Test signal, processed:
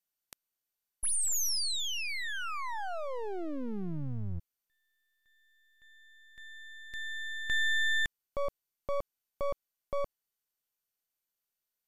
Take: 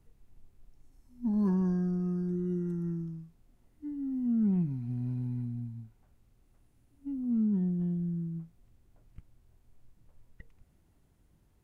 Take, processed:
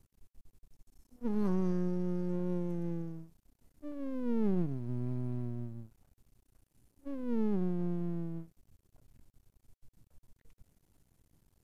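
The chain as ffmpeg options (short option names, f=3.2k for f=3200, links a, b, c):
-af "bass=f=250:g=1,treble=f=4k:g=7,aeval=exprs='max(val(0),0)':c=same" -ar 48000 -c:a mp2 -b:a 192k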